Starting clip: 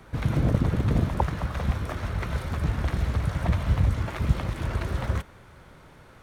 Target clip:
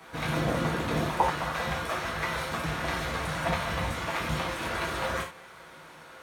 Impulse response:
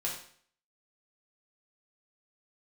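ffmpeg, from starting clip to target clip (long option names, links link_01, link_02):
-filter_complex "[0:a]highpass=frequency=720:poles=1[link_01];[1:a]atrim=start_sample=2205,atrim=end_sample=4410[link_02];[link_01][link_02]afir=irnorm=-1:irlink=0,volume=4dB"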